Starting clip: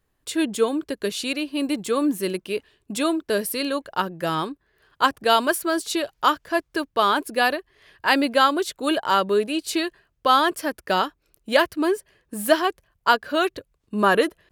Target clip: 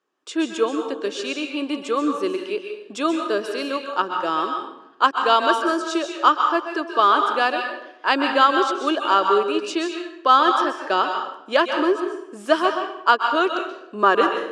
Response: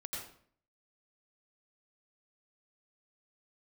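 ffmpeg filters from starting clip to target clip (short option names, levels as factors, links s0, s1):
-filter_complex "[0:a]highpass=f=250:w=0.5412,highpass=f=250:w=1.3066,equalizer=f=360:t=q:w=4:g=5,equalizer=f=1200:t=q:w=4:g=6,equalizer=f=2000:t=q:w=4:g=-6,equalizer=f=4200:t=q:w=4:g=-6,lowpass=f=6500:w=0.5412,lowpass=f=6500:w=1.3066,asplit=2[s0][s1];[1:a]atrim=start_sample=2205,asetrate=28665,aresample=44100,lowshelf=f=490:g=-10[s2];[s1][s2]afir=irnorm=-1:irlink=0,volume=1[s3];[s0][s3]amix=inputs=2:normalize=0,aeval=exprs='1.5*(cos(1*acos(clip(val(0)/1.5,-1,1)))-cos(1*PI/2))+0.015*(cos(7*acos(clip(val(0)/1.5,-1,1)))-cos(7*PI/2))':c=same,volume=0.668"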